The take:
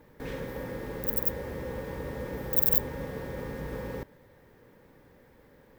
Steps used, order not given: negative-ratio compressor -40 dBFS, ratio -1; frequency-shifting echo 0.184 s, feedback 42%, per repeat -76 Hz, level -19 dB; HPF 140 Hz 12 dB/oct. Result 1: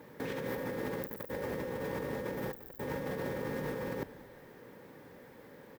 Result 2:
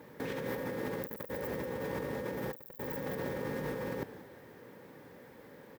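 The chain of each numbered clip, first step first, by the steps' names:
HPF > negative-ratio compressor > frequency-shifting echo; frequency-shifting echo > HPF > negative-ratio compressor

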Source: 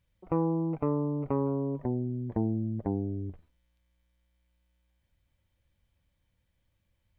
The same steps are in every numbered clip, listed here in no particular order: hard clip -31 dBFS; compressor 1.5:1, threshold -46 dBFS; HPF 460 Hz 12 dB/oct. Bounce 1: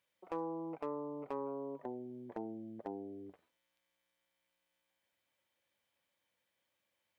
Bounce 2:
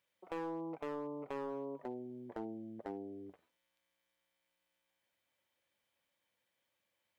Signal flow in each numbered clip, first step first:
HPF > compressor > hard clip; HPF > hard clip > compressor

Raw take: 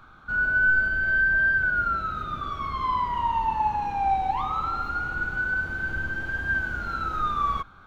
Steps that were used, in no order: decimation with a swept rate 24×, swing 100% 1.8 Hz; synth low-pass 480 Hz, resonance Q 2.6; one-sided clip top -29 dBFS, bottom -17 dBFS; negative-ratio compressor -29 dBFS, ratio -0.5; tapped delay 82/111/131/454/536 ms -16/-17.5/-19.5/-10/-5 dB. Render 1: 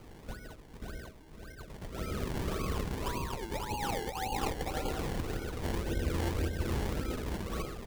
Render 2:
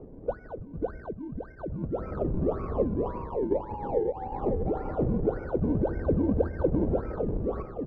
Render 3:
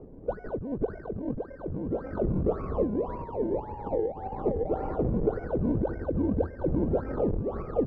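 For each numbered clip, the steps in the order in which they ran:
negative-ratio compressor > tapped delay > one-sided clip > synth low-pass > decimation with a swept rate; negative-ratio compressor > one-sided clip > tapped delay > decimation with a swept rate > synth low-pass; tapped delay > one-sided clip > decimation with a swept rate > negative-ratio compressor > synth low-pass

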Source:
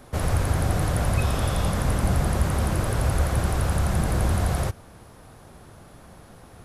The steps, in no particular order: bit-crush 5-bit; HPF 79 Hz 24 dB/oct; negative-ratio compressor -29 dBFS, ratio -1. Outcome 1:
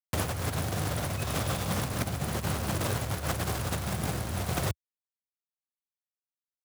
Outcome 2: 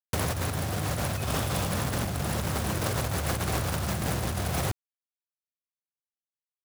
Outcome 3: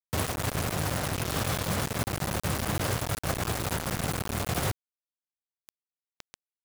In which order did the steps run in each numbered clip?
bit-crush > negative-ratio compressor > HPF; HPF > bit-crush > negative-ratio compressor; negative-ratio compressor > HPF > bit-crush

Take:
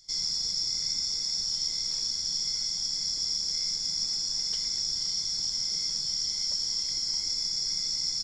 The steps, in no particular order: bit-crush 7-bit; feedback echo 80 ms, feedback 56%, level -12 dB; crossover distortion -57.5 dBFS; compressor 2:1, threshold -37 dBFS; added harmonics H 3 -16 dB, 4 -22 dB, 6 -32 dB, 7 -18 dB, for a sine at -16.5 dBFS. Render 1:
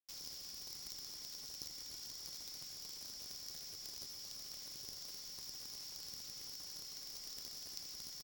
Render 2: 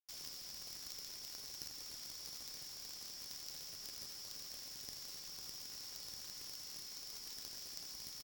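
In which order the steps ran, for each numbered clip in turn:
crossover distortion > bit-crush > compressor > added harmonics > feedback echo; compressor > crossover distortion > bit-crush > added harmonics > feedback echo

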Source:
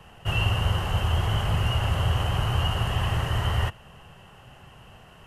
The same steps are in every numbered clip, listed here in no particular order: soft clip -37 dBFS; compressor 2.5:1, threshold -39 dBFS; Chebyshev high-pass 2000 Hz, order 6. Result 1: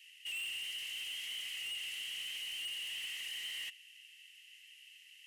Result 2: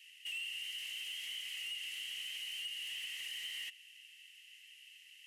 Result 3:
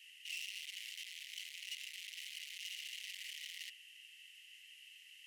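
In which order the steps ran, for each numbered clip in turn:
Chebyshev high-pass > soft clip > compressor; Chebyshev high-pass > compressor > soft clip; soft clip > Chebyshev high-pass > compressor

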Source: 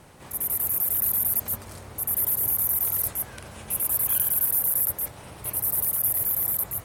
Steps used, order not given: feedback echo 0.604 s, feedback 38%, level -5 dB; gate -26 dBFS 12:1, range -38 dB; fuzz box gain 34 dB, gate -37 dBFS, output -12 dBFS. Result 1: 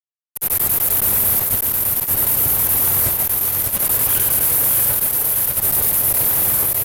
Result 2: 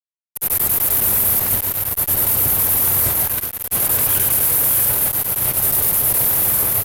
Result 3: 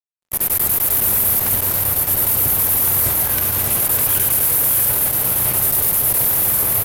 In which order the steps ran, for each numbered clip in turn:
gate > feedback echo > fuzz box; feedback echo > gate > fuzz box; feedback echo > fuzz box > gate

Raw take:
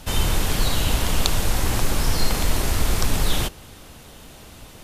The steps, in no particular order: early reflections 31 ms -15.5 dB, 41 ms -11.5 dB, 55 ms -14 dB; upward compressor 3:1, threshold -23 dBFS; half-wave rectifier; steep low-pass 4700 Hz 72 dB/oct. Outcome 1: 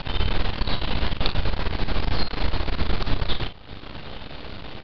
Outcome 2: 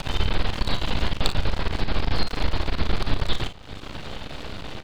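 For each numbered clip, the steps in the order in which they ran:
half-wave rectifier > early reflections > upward compressor > steep low-pass; steep low-pass > half-wave rectifier > upward compressor > early reflections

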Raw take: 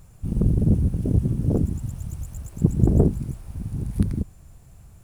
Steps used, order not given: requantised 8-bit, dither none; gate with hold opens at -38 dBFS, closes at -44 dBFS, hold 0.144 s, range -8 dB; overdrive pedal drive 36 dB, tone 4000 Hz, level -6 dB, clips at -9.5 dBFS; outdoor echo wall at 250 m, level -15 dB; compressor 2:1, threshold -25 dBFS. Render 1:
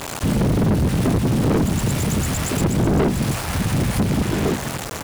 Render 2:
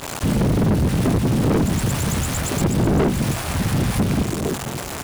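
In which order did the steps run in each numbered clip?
outdoor echo > requantised > compressor > overdrive pedal > gate with hold; requantised > compressor > outdoor echo > gate with hold > overdrive pedal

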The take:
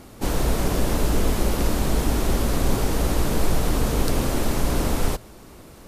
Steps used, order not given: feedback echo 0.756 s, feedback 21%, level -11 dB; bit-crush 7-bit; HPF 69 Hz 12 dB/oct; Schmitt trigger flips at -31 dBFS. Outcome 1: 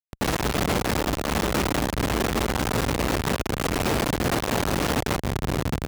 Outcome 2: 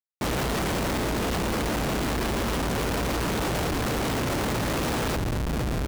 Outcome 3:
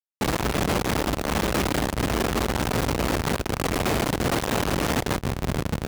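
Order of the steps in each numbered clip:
bit-crush > feedback echo > Schmitt trigger > HPF; HPF > bit-crush > feedback echo > Schmitt trigger; feedback echo > Schmitt trigger > bit-crush > HPF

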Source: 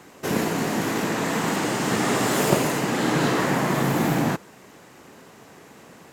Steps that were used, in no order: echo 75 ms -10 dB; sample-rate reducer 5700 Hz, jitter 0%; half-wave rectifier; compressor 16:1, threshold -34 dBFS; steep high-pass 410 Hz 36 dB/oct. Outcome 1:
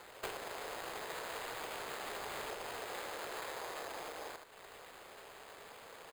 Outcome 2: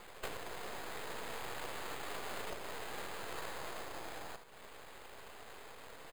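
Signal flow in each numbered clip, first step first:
half-wave rectifier > echo > compressor > steep high-pass > sample-rate reducer; compressor > steep high-pass > half-wave rectifier > echo > sample-rate reducer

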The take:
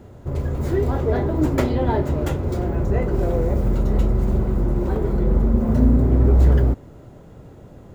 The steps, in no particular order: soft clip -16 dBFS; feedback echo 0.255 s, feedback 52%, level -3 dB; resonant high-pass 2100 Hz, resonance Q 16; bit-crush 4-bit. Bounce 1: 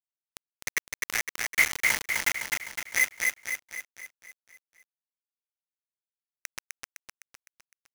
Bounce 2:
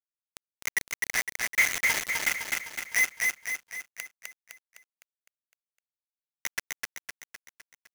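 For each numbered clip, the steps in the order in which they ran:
soft clip > resonant high-pass > bit-crush > feedback echo; resonant high-pass > bit-crush > soft clip > feedback echo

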